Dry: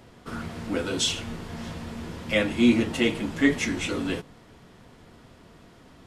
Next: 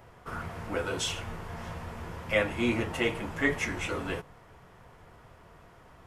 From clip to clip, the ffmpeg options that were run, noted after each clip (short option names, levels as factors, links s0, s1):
-af "equalizer=f=250:t=o:w=1:g=-12,equalizer=f=1000:t=o:w=1:g=3,equalizer=f=4000:t=o:w=1:g=-9,equalizer=f=8000:t=o:w=1:g=-5"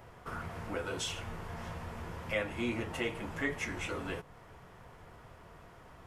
-af "acompressor=threshold=0.00708:ratio=1.5"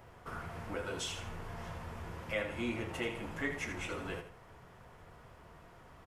-af "aecho=1:1:80|160|240:0.335|0.104|0.0322,volume=0.75"